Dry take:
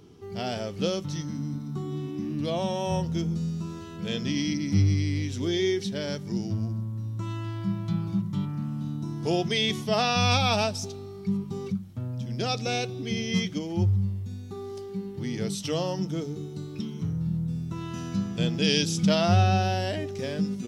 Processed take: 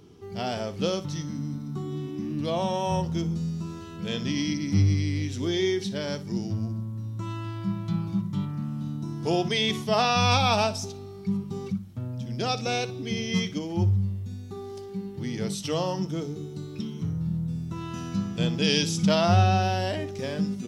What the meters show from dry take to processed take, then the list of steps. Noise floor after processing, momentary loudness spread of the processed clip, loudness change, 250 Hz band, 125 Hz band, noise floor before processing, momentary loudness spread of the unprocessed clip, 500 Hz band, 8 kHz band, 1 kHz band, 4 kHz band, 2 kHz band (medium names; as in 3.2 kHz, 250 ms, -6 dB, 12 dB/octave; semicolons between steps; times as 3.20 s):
-40 dBFS, 12 LU, +0.5 dB, 0.0 dB, 0.0 dB, -39 dBFS, 12 LU, +1.0 dB, 0.0 dB, +2.5 dB, +0.5 dB, +0.5 dB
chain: dynamic bell 1 kHz, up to +5 dB, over -44 dBFS, Q 1.8; on a send: flutter echo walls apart 10.2 m, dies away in 0.23 s